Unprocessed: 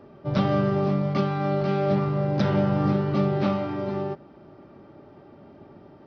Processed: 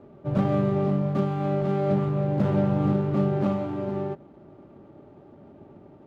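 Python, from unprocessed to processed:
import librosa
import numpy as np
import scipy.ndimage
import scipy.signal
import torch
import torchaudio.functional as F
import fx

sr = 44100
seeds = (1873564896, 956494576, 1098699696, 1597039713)

y = scipy.ndimage.median_filter(x, 25, mode='constant')
y = fx.high_shelf(y, sr, hz=2600.0, db=-11.0)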